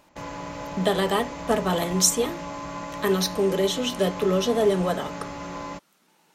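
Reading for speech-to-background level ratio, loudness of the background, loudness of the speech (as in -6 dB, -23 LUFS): 11.0 dB, -35.0 LUFS, -24.0 LUFS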